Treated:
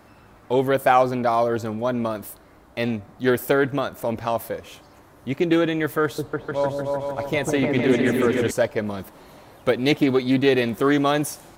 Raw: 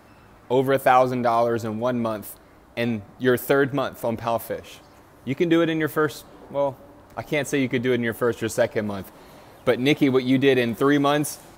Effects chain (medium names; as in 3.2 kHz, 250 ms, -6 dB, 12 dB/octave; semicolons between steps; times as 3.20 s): 6.03–8.51 s: delay with an opening low-pass 151 ms, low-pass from 400 Hz, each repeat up 2 oct, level 0 dB; loudspeaker Doppler distortion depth 0.13 ms